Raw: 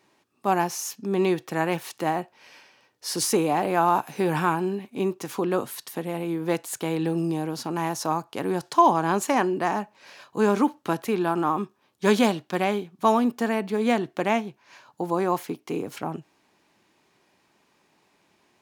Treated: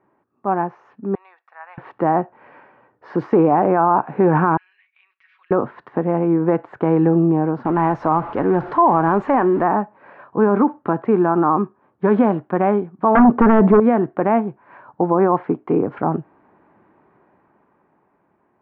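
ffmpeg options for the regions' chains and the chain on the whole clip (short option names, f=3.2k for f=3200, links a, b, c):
-filter_complex "[0:a]asettb=1/sr,asplit=3[a][b][c];[a]atrim=end=1.154[d];[b]atrim=start=1.15:end=1.78,asetpts=PTS-STARTPTS,afade=t=in:d=0.004:c=qsin,afade=t=out:st=0.626:d=0.004:c=qsin,highpass=f=710:w=0.5412,highpass=f=710:w=1.3066,aderivative,bandreject=f=3.1k:w=8.7[e];[c]atrim=start=1.776[f];[d][e]acrossfade=d=0.004:c1=hsin:c2=qsin[g];[g][f]acrossfade=d=0.004:c1=qsin:c2=hsin,asettb=1/sr,asplit=3[h][i][j];[h]atrim=end=4.574[k];[i]atrim=start=4.57:end=5.51,asetpts=PTS-STARTPTS,afade=t=in:d=0.004:c=qsin,afade=t=out:st=0.936:d=0.004:c=qsin,asuperpass=centerf=3400:order=8:qfactor=0.91,aecho=1:1:5.4:0.62,atrim=end_sample=41454,acompressor=threshold=-51dB:ratio=2:attack=3.2:release=140:knee=1:detection=peak[l];[j]atrim=start=5.506[m];[k][l]acrossfade=d=0.004:c1=hsin:c2=qsin[n];[n][m]acrossfade=d=0.004:c1=qsin:c2=hsin,asettb=1/sr,asplit=3[o][p][q];[o]atrim=end=7.654[r];[p]atrim=start=7.65:end=9.63,asetpts=PTS-STARTPTS,afade=t=in:d=0.004:c=qsin,afade=t=out:st=1.976:d=0.004:c=qsin,aeval=exprs='val(0)+0.5*0.0224*sgn(val(0))':c=same,aemphasis=mode=production:type=75fm[s];[q]atrim=start=9.626[t];[r][s]acrossfade=d=0.004:c1=hsin:c2=qsin[u];[u][t]acrossfade=d=0.004:c1=qsin:c2=hsin,asettb=1/sr,asplit=3[v][w][x];[v]atrim=end=13.154[y];[w]atrim=start=13.15:end=13.8,asetpts=PTS-STARTPTS,afade=t=in:d=0.004:c=qsin,afade=t=out:st=0.646:d=0.004:c=qsin,equalizer=f=4.5k:w=0.45:g=-6.5,aeval=exprs='0.266*sin(PI/2*3.16*val(0)/0.266)':c=same[z];[x]atrim=start=13.796[aa];[y][z]acrossfade=d=0.004:c1=hsin:c2=qsin[ab];[ab][aa]acrossfade=d=0.004:c1=qsin:c2=hsin,lowpass=f=1.5k:w=0.5412,lowpass=f=1.5k:w=1.3066,dynaudnorm=f=180:g=17:m=11.5dB,alimiter=level_in=7.5dB:limit=-1dB:release=50:level=0:latency=1,volume=-5dB"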